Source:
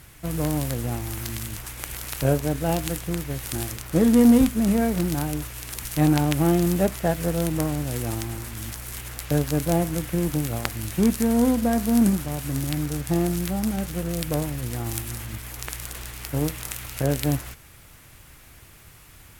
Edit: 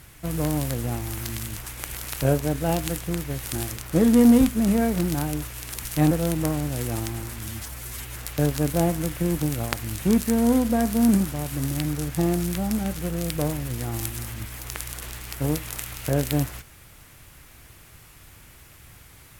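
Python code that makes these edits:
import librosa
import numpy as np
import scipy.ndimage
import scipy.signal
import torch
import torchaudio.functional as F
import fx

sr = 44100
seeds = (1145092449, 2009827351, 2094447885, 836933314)

y = fx.edit(x, sr, fx.cut(start_s=6.11, length_s=1.15),
    fx.stretch_span(start_s=8.63, length_s=0.45, factor=1.5), tone=tone)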